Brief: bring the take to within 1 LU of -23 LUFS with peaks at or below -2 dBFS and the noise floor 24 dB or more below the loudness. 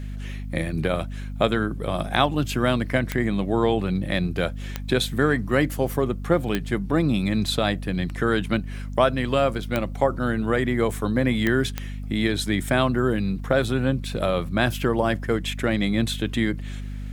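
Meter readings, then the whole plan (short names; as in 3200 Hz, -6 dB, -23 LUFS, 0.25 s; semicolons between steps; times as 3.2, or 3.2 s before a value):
clicks 6; hum 50 Hz; harmonics up to 250 Hz; hum level -29 dBFS; loudness -24.0 LUFS; peak -3.5 dBFS; loudness target -23.0 LUFS
-> de-click; de-hum 50 Hz, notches 5; gain +1 dB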